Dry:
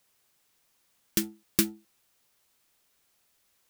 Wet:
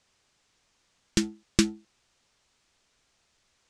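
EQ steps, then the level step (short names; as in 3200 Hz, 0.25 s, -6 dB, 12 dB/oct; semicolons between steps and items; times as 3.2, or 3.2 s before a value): LPF 7400 Hz 24 dB/oct; low shelf 89 Hz +9 dB; +3.5 dB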